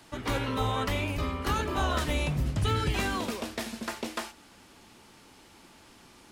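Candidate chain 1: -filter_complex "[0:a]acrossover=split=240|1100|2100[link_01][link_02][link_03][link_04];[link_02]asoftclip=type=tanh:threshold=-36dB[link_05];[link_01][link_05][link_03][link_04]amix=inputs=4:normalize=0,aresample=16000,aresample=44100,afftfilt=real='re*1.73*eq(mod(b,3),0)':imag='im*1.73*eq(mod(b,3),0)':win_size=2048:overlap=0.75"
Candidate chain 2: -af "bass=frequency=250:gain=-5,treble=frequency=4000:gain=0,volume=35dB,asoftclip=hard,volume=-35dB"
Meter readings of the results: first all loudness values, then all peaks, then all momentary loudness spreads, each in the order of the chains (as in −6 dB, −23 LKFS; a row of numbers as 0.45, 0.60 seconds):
−33.5, −37.5 LKFS; −19.0, −35.0 dBFS; 10, 18 LU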